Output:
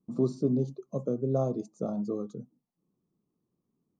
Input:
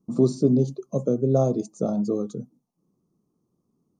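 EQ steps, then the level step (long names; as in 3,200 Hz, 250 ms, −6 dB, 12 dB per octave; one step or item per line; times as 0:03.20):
low-pass filter 3,700 Hz 6 dB per octave
dynamic equaliser 1,100 Hz, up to +5 dB, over −47 dBFS, Q 2.8
−7.5 dB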